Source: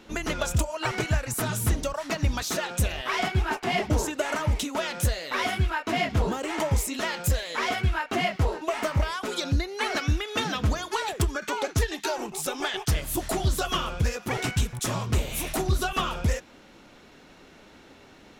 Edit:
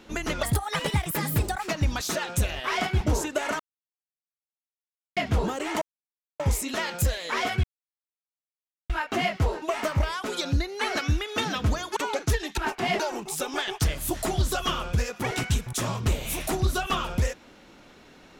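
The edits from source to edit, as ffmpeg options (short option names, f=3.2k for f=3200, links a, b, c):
-filter_complex "[0:a]asplit=11[a][b][c][d][e][f][g][h][i][j][k];[a]atrim=end=0.434[l];[b]atrim=start=0.43:end=2.1,asetpts=PTS-STARTPTS,asetrate=58653,aresample=44100[m];[c]atrim=start=2.096:end=3.422[n];[d]atrim=start=3.838:end=4.43,asetpts=PTS-STARTPTS,afade=t=out:st=0.588:d=0.004:c=hsin[o];[e]atrim=start=4.43:end=6,asetpts=PTS-STARTPTS,volume=0[p];[f]atrim=start=6:end=6.65,asetpts=PTS-STARTPTS,afade=t=in:d=0.004:c=hsin,afade=t=out:st=0.646:d=0.004:c=hsin,apad=pad_dur=0.58[q];[g]atrim=start=6.65:end=7.89,asetpts=PTS-STARTPTS,afade=t=in:d=0.004:c=hsin,afade=t=out:st=1.236:d=0.004:c=hsin,apad=pad_dur=1.26[r];[h]atrim=start=7.89:end=10.962,asetpts=PTS-STARTPTS,afade=t=in:d=0.004:c=hsin[s];[i]atrim=start=11.448:end=12.062[t];[j]atrim=start=3.418:end=3.842[u];[k]atrim=start=12.058[v];[l][m]acrossfade=d=0.004:c1=hsin:c2=hsin[w];[w][n]acrossfade=d=0.004:c1=hsin:c2=hsin[x];[o][p][q][r][s]concat=n=5:v=0:a=1[y];[x][y]acrossfade=d=0.004:c1=hsin:c2=hsin[z];[z][t]acrossfade=d=0.004:c1=hsin:c2=hsin[aa];[aa][u]acrossfade=d=0.004:c1=hsin:c2=hsin[ab];[ab][v]acrossfade=d=0.004:c1=hsin:c2=hsin"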